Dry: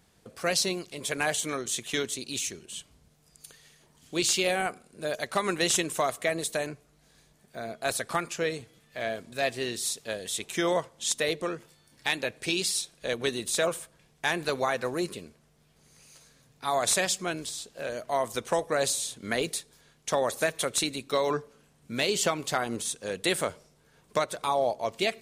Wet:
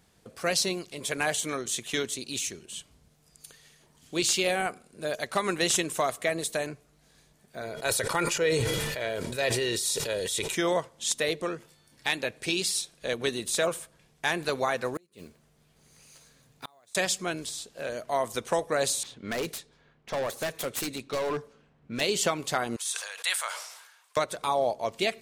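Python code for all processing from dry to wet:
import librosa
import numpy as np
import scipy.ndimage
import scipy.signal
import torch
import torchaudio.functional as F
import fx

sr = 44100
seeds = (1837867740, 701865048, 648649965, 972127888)

y = fx.chain(x, sr, fx.comb(ms=2.1, depth=0.5),
    fx.sustainer(db_per_s=21.0), at=(7.61, 10.55))
y = fx.chain(y, sr, fx.block_float(bits=5),
    fx.notch(hz=5400.0, q=27.0),
    fx.gate_flip(shuts_db=-24.0, range_db=-34), at=(14.95, 16.95))
y = fx.chain(y, sr, fx.self_delay(depth_ms=0.18),
    fx.env_lowpass(base_hz=1700.0, full_db=-27.5),
    fx.clip_hard(threshold_db=-26.0), at=(19.03, 22.01))
y = fx.chain(y, sr, fx.highpass(hz=910.0, slope=24),
    fx.sustainer(db_per_s=55.0), at=(22.76, 24.17))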